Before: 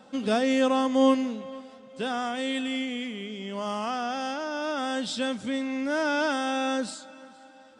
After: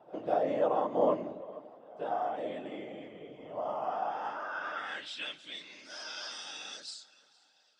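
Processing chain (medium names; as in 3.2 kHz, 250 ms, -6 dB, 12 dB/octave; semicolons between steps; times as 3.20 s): whisper effect; band-pass sweep 670 Hz -> 4.8 kHz, 3.83–5.83 s; pre-echo 200 ms -23 dB; on a send at -14 dB: reverberation RT60 1.6 s, pre-delay 7 ms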